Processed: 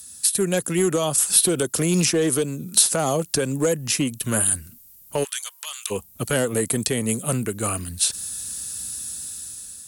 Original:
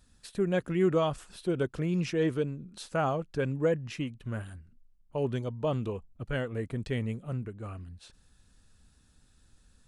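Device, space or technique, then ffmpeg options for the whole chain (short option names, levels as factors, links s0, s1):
FM broadcast chain: -filter_complex "[0:a]highpass=80,dynaudnorm=f=420:g=5:m=3.16,acrossover=split=160|600|1400|3700[s0][s1][s2][s3][s4];[s0]acompressor=threshold=0.01:ratio=4[s5];[s1]acompressor=threshold=0.1:ratio=4[s6];[s2]acompressor=threshold=0.0398:ratio=4[s7];[s3]acompressor=threshold=0.00447:ratio=4[s8];[s4]acompressor=threshold=0.00501:ratio=4[s9];[s5][s6][s7][s8][s9]amix=inputs=5:normalize=0,aemphasis=mode=production:type=75fm,alimiter=limit=0.112:level=0:latency=1:release=409,asoftclip=type=hard:threshold=0.0891,lowpass=f=15000:w=0.5412,lowpass=f=15000:w=1.3066,aemphasis=mode=production:type=75fm,asplit=3[s10][s11][s12];[s10]afade=t=out:st=5.23:d=0.02[s13];[s11]highpass=f=1400:w=0.5412,highpass=f=1400:w=1.3066,afade=t=in:st=5.23:d=0.02,afade=t=out:st=5.9:d=0.02[s14];[s12]afade=t=in:st=5.9:d=0.02[s15];[s13][s14][s15]amix=inputs=3:normalize=0,volume=2.37"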